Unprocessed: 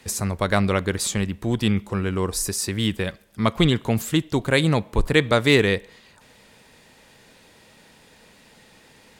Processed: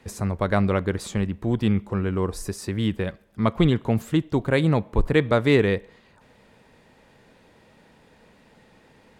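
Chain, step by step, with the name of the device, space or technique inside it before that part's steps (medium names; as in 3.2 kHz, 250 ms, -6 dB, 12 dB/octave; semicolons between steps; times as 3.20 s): through cloth (treble shelf 2.6 kHz -14 dB)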